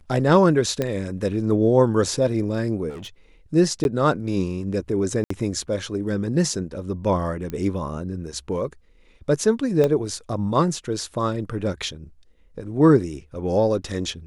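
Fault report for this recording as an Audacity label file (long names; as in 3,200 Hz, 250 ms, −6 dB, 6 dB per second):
0.820000	0.820000	click −11 dBFS
2.890000	3.080000	clipping −33 dBFS
3.840000	3.850000	drop-out 11 ms
5.240000	5.300000	drop-out 64 ms
7.500000	7.500000	click −18 dBFS
9.840000	9.840000	click −10 dBFS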